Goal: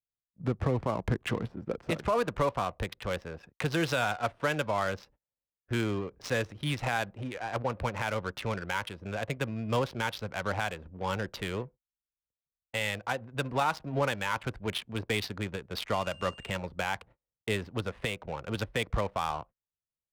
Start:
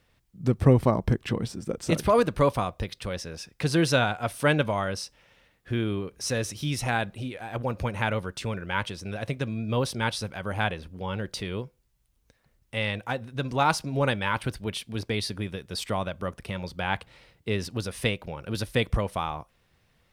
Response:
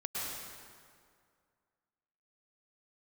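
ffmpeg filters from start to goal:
-filter_complex "[0:a]agate=range=-34dB:threshold=-46dB:ratio=16:detection=peak,acrossover=split=290|520|4000[a][b][c][d];[c]acontrast=79[e];[a][b][e][d]amix=inputs=4:normalize=0,asettb=1/sr,asplit=3[f][g][h];[f]atrim=end=15.934[i];[g]atrim=start=15.93:end=16.57,asetpts=PTS-STARTPTS,afade=t=in:d=0.004:c=qsin,afade=t=out:st=0.636:d=0.004:c=qsin,aeval=exprs='val(0)+0.02*sin(2*PI*2800*n/s)':c=same[j];[h]atrim=start=16.566[k];[i][j]acrossfade=d=0.004:c1=hsin:c2=qsin[l];[l][k]acrossfade=d=0.004:c1=qsin:c2=hsin,adynamicsmooth=sensitivity=4.5:basefreq=600,alimiter=limit=-15dB:level=0:latency=1:release=243,volume=-3.5dB"

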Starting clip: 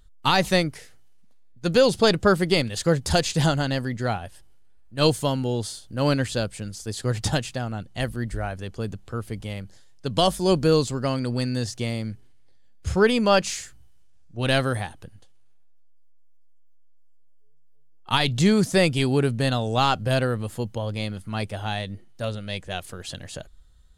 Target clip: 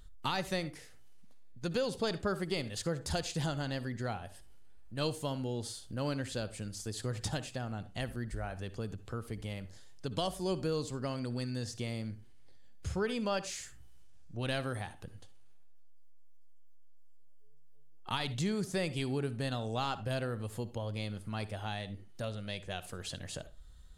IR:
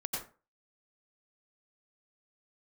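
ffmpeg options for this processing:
-filter_complex "[0:a]asplit=2[a][b];[1:a]atrim=start_sample=2205,asetrate=70560,aresample=44100[c];[b][c]afir=irnorm=-1:irlink=0,volume=-12dB[d];[a][d]amix=inputs=2:normalize=0,acompressor=threshold=-44dB:ratio=2"

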